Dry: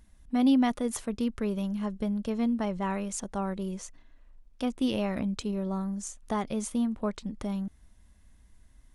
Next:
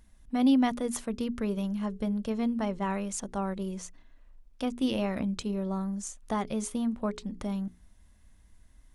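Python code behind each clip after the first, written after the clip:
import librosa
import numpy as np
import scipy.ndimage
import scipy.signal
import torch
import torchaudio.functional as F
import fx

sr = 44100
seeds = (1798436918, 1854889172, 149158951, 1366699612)

y = fx.hum_notches(x, sr, base_hz=60, count=7)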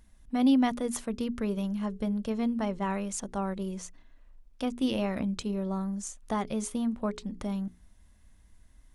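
y = x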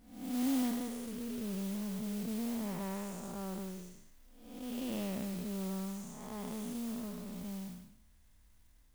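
y = fx.spec_blur(x, sr, span_ms=354.0)
y = fx.mod_noise(y, sr, seeds[0], snr_db=13)
y = y * 10.0 ** (-5.5 / 20.0)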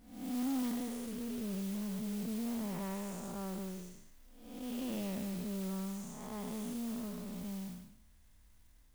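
y = 10.0 ** (-32.0 / 20.0) * np.tanh(x / 10.0 ** (-32.0 / 20.0))
y = y * 10.0 ** (1.0 / 20.0)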